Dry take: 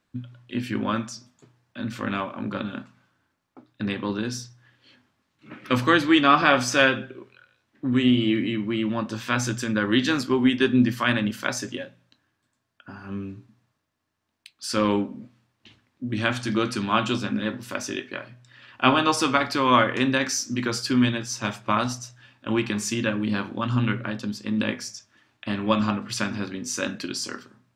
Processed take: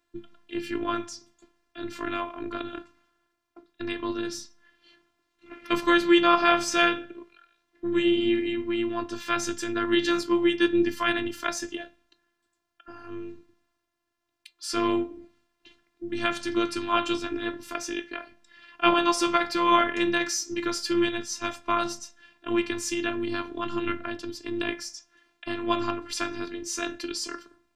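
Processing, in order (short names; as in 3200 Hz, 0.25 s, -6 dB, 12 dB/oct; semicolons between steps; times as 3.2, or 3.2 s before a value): notches 60/120 Hz; robotiser 344 Hz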